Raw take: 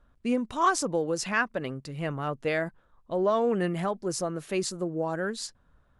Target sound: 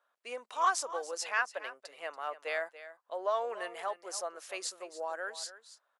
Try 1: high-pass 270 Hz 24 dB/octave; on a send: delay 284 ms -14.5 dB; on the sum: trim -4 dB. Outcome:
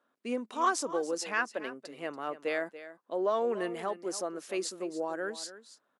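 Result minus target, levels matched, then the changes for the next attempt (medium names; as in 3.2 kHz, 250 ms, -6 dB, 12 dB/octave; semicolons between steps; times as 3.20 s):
250 Hz band +16.0 dB
change: high-pass 580 Hz 24 dB/octave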